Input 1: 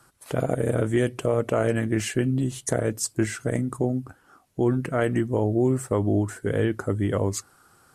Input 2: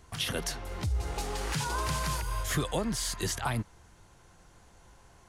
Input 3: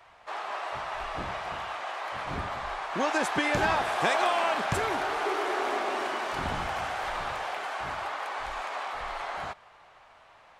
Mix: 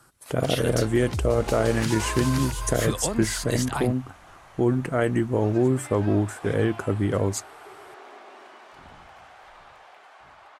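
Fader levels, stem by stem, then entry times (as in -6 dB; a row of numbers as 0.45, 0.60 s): +0.5, +2.0, -16.0 dB; 0.00, 0.30, 2.40 s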